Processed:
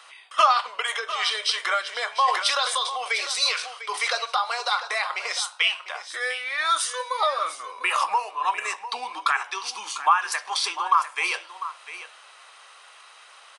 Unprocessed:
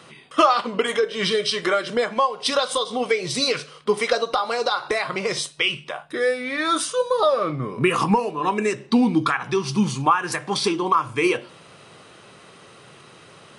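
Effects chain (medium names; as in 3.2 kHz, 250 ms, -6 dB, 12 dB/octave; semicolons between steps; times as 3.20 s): high-pass 770 Hz 24 dB/octave; delay 699 ms -13 dB; 2.12–4.13 s: decay stretcher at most 67 dB/s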